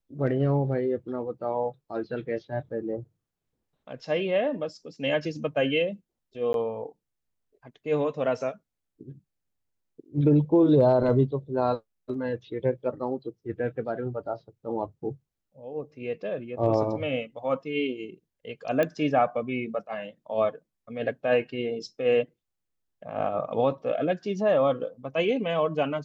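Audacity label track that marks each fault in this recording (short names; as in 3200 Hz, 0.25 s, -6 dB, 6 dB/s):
6.530000	6.540000	gap 12 ms
18.830000	18.830000	pop -14 dBFS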